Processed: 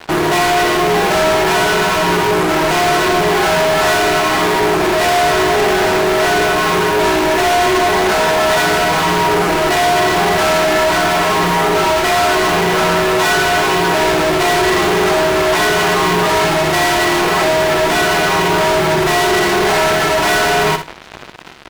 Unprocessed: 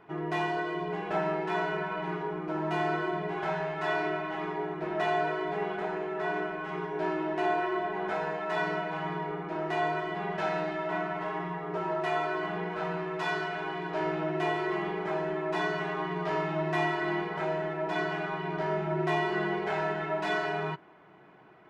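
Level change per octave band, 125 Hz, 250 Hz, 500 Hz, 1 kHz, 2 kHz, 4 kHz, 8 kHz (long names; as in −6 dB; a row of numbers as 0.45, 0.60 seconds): +15.0 dB, +16.0 dB, +17.5 dB, +18.0 dB, +19.0 dB, +26.5 dB, can't be measured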